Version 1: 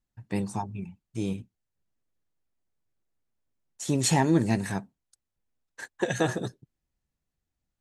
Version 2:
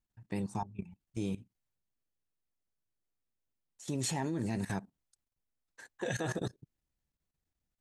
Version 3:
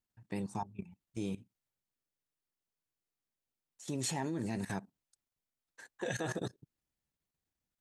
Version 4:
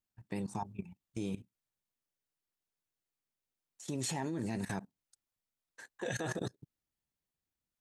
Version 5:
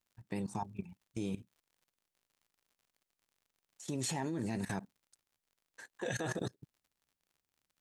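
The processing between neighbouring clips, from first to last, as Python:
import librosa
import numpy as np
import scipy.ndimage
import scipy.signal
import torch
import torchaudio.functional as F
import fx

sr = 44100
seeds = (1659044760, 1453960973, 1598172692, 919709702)

y1 = fx.level_steps(x, sr, step_db=17)
y2 = fx.low_shelf(y1, sr, hz=73.0, db=-10.5)
y2 = y2 * librosa.db_to_amplitude(-1.0)
y3 = fx.level_steps(y2, sr, step_db=14)
y3 = y3 * librosa.db_to_amplitude(5.5)
y4 = fx.dmg_crackle(y3, sr, seeds[0], per_s=71.0, level_db=-59.0)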